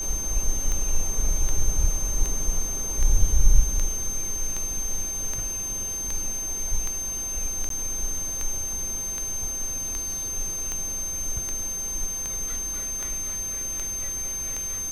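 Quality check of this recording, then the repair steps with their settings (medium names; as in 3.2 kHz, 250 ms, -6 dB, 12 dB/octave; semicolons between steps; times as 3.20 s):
tick 78 rpm -15 dBFS
whine 6.3 kHz -28 dBFS
7.69–7.70 s: dropout 13 ms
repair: de-click; band-stop 6.3 kHz, Q 30; interpolate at 7.69 s, 13 ms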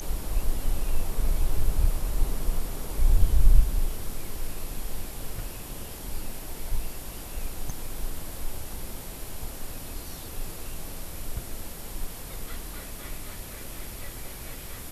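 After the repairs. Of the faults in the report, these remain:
nothing left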